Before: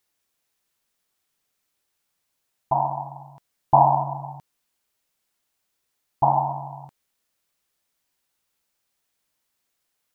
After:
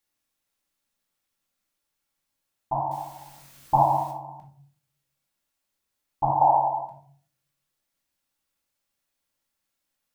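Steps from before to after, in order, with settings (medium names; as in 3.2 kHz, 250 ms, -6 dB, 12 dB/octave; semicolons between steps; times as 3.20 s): 2.91–4.11 s: word length cut 8-bit, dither triangular; 6.41–6.83 s: high-order bell 610 Hz +14.5 dB; reverberation RT60 0.50 s, pre-delay 4 ms, DRR -0.5 dB; trim -7 dB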